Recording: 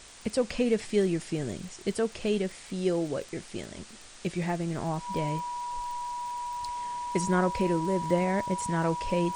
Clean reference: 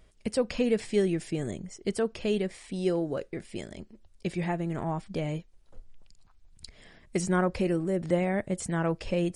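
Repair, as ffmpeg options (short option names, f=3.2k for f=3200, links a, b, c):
-af "adeclick=t=4,bandreject=f=970:w=30,afwtdn=0.0045"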